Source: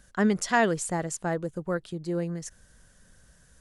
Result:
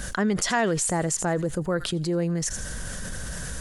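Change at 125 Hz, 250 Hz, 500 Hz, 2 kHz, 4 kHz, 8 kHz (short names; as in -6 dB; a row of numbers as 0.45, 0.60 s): +5.5, +2.0, +2.0, +1.0, +8.5, +8.5 dB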